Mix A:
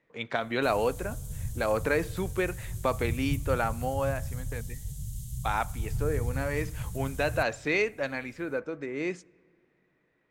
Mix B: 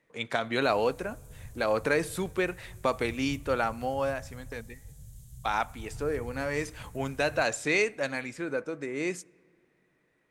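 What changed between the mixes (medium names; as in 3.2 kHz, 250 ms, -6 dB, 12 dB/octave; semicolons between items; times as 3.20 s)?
speech: remove distance through air 120 m; background -11.0 dB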